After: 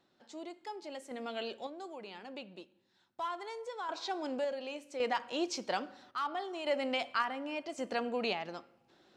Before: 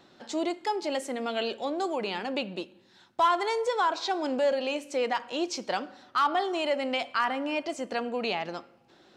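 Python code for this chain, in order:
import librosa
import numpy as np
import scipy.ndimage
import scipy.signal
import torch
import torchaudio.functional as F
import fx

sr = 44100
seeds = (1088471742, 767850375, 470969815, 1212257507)

y = fx.tremolo_random(x, sr, seeds[0], hz=1.8, depth_pct=75)
y = y * librosa.db_to_amplitude(-3.5)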